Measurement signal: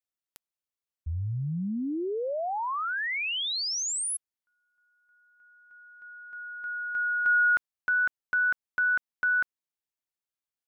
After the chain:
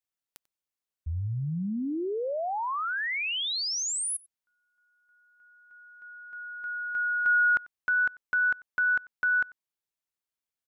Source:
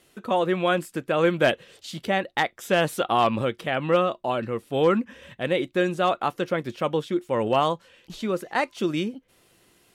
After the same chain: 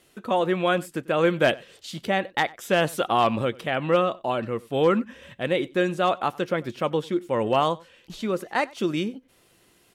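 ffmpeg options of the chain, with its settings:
ffmpeg -i in.wav -filter_complex "[0:a]asplit=2[link_01][link_02];[link_02]adelay=93.29,volume=-23dB,highshelf=frequency=4000:gain=-2.1[link_03];[link_01][link_03]amix=inputs=2:normalize=0" out.wav

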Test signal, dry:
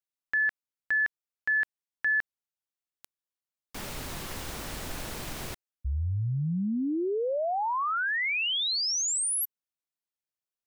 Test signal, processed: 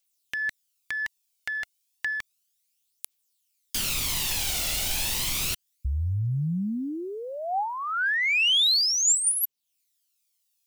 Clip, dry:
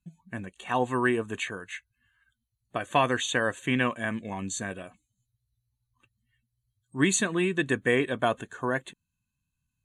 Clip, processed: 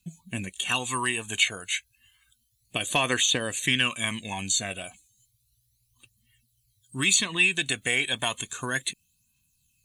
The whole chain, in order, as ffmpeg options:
ffmpeg -i in.wav -filter_complex "[0:a]acrossover=split=1200|3900[link_01][link_02][link_03];[link_01]acompressor=threshold=-31dB:ratio=4[link_04];[link_02]acompressor=threshold=-30dB:ratio=4[link_05];[link_03]acompressor=threshold=-48dB:ratio=4[link_06];[link_04][link_05][link_06]amix=inputs=3:normalize=0,aexciter=amount=3.5:drive=8.5:freq=2300,aphaser=in_gain=1:out_gain=1:delay=1.5:decay=0.5:speed=0.32:type=triangular" out.wav

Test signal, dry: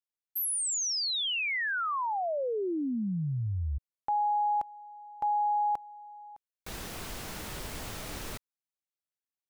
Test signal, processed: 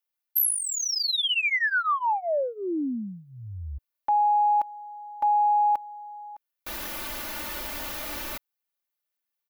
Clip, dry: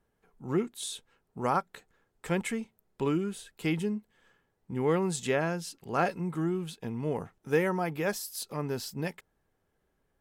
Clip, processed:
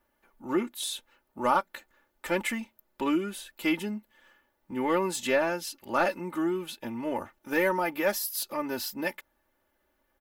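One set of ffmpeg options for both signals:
ffmpeg -i in.wav -filter_complex "[0:a]asplit=2[link_01][link_02];[link_02]highpass=frequency=720:poles=1,volume=9dB,asoftclip=type=tanh:threshold=-13.5dB[link_03];[link_01][link_03]amix=inputs=2:normalize=0,lowpass=frequency=4100:poles=1,volume=-6dB,aexciter=amount=5.4:drive=2.1:freq=11000,aecho=1:1:3.4:0.86" out.wav

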